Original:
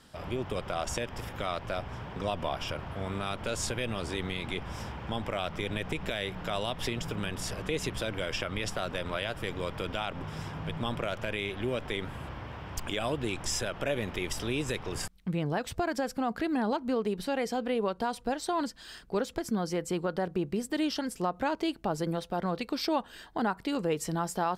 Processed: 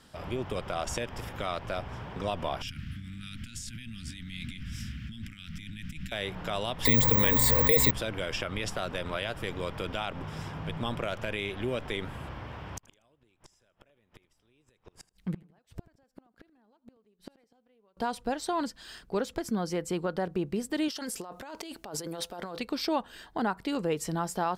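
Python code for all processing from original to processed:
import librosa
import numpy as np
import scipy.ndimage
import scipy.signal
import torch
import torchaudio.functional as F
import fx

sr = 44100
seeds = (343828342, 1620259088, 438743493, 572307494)

y = fx.chain(x, sr, fx.peak_eq(hz=1600.0, db=-6.0, octaves=0.84),
    fx.over_compress(threshold_db=-38.0, ratio=-1.0),
    fx.ellip_bandstop(low_hz=250.0, high_hz=1600.0, order=3, stop_db=40), at=(2.62, 6.12))
y = fx.chain(y, sr, fx.ripple_eq(per_octave=1.0, db=16),
    fx.resample_bad(factor=2, down='none', up='zero_stuff'),
    fx.env_flatten(amount_pct=70), at=(6.85, 7.91))
y = fx.chain(y, sr, fx.gate_flip(shuts_db=-24.0, range_db=-37),
    fx.echo_feedback(ms=80, feedback_pct=41, wet_db=-21.0), at=(12.75, 17.97))
y = fx.chain(y, sr, fx.bass_treble(bass_db=-10, treble_db=6),
    fx.over_compress(threshold_db=-39.0, ratio=-1.0), at=(20.88, 22.59))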